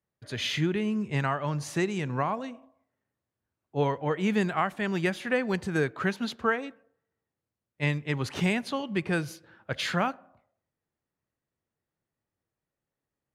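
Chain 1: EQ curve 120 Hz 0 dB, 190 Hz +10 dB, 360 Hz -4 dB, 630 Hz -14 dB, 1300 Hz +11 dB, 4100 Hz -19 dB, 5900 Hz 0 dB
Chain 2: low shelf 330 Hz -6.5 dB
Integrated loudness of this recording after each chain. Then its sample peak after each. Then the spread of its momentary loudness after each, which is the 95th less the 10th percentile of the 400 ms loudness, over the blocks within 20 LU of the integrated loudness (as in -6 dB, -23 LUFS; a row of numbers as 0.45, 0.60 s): -24.5, -31.5 LUFS; -7.5, -13.5 dBFS; 13, 7 LU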